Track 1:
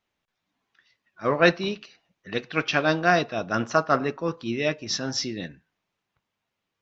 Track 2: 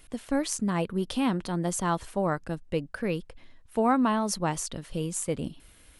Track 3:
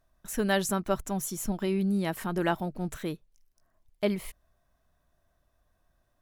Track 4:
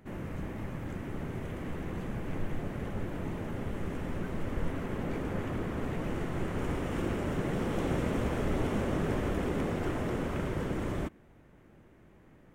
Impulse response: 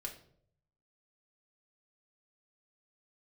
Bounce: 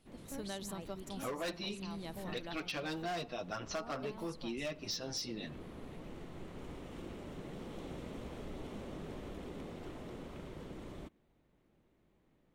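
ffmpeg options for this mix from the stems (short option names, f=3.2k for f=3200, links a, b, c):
-filter_complex "[0:a]equalizer=f=3.7k:w=4.2:g=-4.5,asplit=2[a][b];[b]adelay=7.4,afreqshift=0.81[c];[a][c]amix=inputs=2:normalize=1,volume=-1dB[d];[1:a]volume=-19dB[e];[2:a]volume=-13.5dB,asplit=2[f][g];[g]volume=-23.5dB[h];[3:a]volume=-13.5dB[i];[h]aecho=0:1:161:1[j];[d][e][f][i][j]amix=inputs=5:normalize=0,equalizer=f=100:t=o:w=0.67:g=-5,equalizer=f=1.6k:t=o:w=0.67:g=-5,equalizer=f=4k:t=o:w=0.67:g=8,asoftclip=type=hard:threshold=-24dB,acompressor=threshold=-38dB:ratio=5"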